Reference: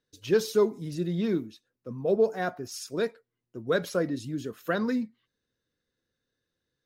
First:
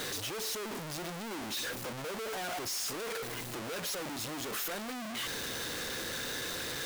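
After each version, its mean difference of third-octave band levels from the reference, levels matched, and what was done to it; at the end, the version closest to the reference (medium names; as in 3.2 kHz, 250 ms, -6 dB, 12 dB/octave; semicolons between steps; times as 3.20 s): 18.0 dB: one-bit comparator; bass shelf 280 Hz -10.5 dB; trim -5 dB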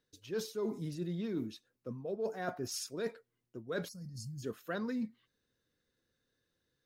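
4.5 dB: reverse; compression 10:1, threshold -35 dBFS, peak gain reduction 17 dB; reverse; time-frequency box 3.88–4.43 s, 220–4200 Hz -27 dB; trim +1 dB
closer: second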